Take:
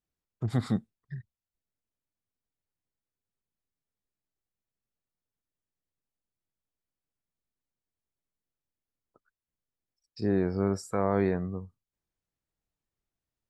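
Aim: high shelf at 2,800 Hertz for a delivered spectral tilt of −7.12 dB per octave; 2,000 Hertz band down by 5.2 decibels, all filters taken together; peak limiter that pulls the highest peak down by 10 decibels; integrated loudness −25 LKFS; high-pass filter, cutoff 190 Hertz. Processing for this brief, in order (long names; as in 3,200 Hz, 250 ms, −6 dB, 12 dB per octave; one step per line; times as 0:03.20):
high-pass filter 190 Hz
parametric band 2,000 Hz −4 dB
high-shelf EQ 2,800 Hz −7.5 dB
level +13.5 dB
brickwall limiter −13 dBFS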